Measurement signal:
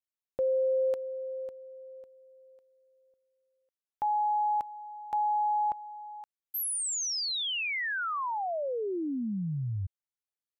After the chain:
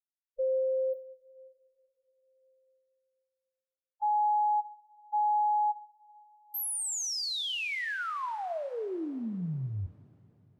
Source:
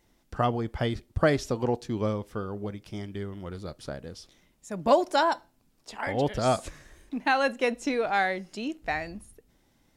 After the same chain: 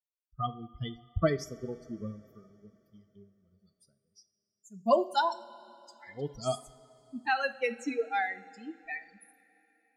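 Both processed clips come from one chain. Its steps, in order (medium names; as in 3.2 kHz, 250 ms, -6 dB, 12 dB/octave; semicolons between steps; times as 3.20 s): expander on every frequency bin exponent 3; two-slope reverb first 0.41 s, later 3.6 s, from -17 dB, DRR 10.5 dB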